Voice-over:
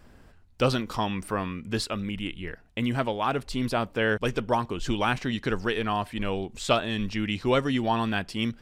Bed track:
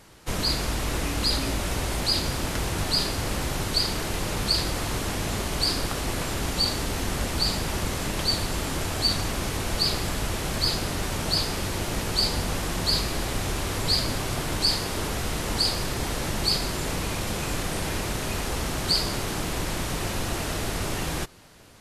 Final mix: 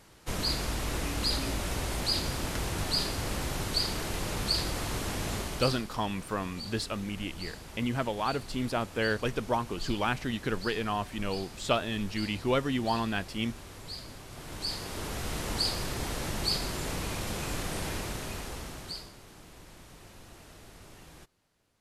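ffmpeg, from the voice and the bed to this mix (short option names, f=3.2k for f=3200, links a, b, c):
-filter_complex "[0:a]adelay=5000,volume=-4dB[a];[1:a]volume=7.5dB,afade=t=out:st=5.34:d=0.54:silence=0.223872,afade=t=in:st=14.29:d=1.08:silence=0.237137,afade=t=out:st=17.85:d=1.28:silence=0.141254[b];[a][b]amix=inputs=2:normalize=0"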